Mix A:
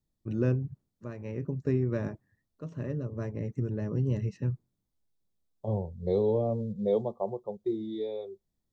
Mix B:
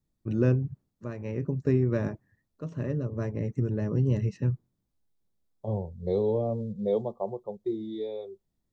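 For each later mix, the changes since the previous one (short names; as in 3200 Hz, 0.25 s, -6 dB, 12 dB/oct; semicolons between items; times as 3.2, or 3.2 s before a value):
first voice +3.5 dB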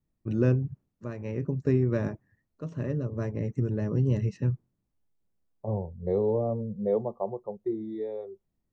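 second voice: add resonant high shelf 2300 Hz -9.5 dB, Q 3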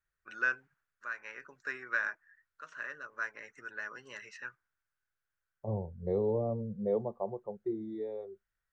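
first voice: add resonant high-pass 1500 Hz, resonance Q 6.7; second voice -4.5 dB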